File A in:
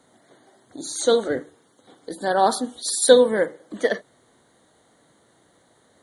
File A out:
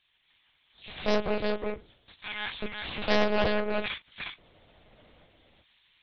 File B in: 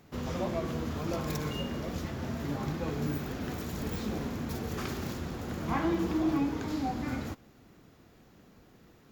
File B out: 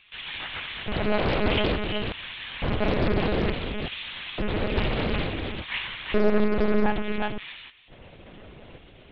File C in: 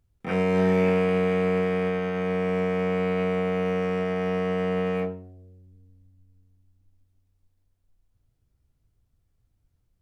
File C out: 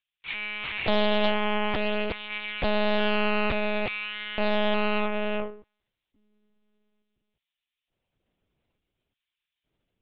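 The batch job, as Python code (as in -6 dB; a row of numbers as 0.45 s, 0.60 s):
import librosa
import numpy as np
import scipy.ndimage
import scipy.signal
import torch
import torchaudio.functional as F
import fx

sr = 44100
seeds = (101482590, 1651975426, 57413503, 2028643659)

y = fx.lower_of_two(x, sr, delay_ms=0.33)
y = fx.high_shelf(y, sr, hz=2400.0, db=8.0)
y = fx.rider(y, sr, range_db=4, speed_s=2.0)
y = 10.0 ** (-9.5 / 20.0) * np.tanh(y / 10.0 ** (-9.5 / 20.0))
y = fx.filter_lfo_highpass(y, sr, shape='square', hz=0.57, low_hz=270.0, high_hz=2500.0, q=0.8)
y = np.clip(10.0 ** (18.5 / 20.0) * y, -1.0, 1.0) / 10.0 ** (18.5 / 20.0)
y = fx.air_absorb(y, sr, metres=140.0)
y = y + 10.0 ** (-4.0 / 20.0) * np.pad(y, (int(359 * sr / 1000.0), 0))[:len(y)]
y = fx.lpc_monotone(y, sr, seeds[0], pitch_hz=210.0, order=10)
y = fx.doppler_dist(y, sr, depth_ms=0.59)
y = y * 10.0 ** (-9 / 20.0) / np.max(np.abs(y))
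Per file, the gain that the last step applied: -1.0 dB, +12.5 dB, +4.5 dB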